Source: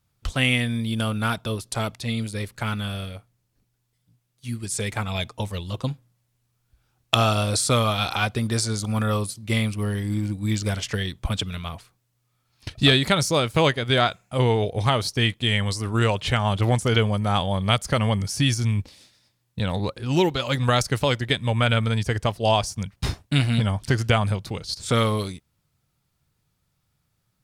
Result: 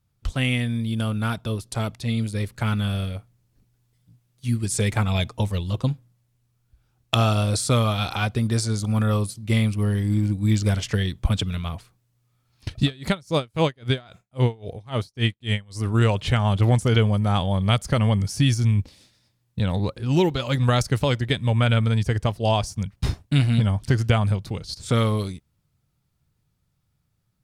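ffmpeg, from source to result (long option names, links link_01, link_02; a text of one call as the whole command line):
ffmpeg -i in.wav -filter_complex "[0:a]asettb=1/sr,asplit=3[link_01][link_02][link_03];[link_01]atrim=end=12.824[link_04];[link_02]atrim=start=12.82:end=15.8,asetpts=PTS-STARTPTS,afade=type=in:duration=0.004:curve=qsin,afade=type=out:start_time=2.976:duration=0.004:curve=qsin,aeval=exprs='val(0)*pow(10,-30*(0.5-0.5*cos(2*PI*3.7*n/s))/20)':channel_layout=same[link_05];[link_03]atrim=start=15.796[link_06];[link_04][link_05]acrossfade=duration=0.004:curve1=hsin:curve2=qsin[link_07];[link_07][link_06]acrossfade=duration=0.004:curve1=qsin:curve2=hsin,lowshelf=frequency=340:gain=7,dynaudnorm=framelen=970:gausssize=5:maxgain=11.5dB,volume=-5dB" out.wav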